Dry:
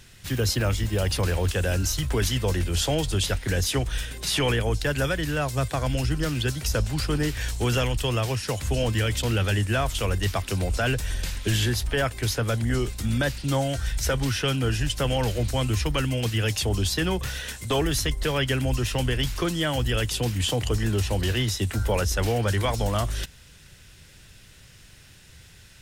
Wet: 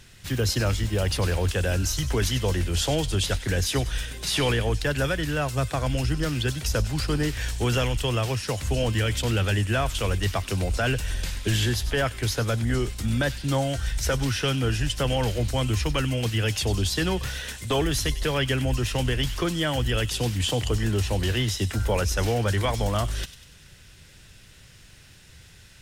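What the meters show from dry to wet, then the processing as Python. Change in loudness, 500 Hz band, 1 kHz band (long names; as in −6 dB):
0.0 dB, 0.0 dB, 0.0 dB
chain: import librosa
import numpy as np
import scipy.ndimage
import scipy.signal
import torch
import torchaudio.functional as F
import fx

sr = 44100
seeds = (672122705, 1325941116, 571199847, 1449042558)

y = fx.high_shelf(x, sr, hz=11000.0, db=-4.0)
y = fx.echo_wet_highpass(y, sr, ms=97, feedback_pct=49, hz=2600.0, wet_db=-11)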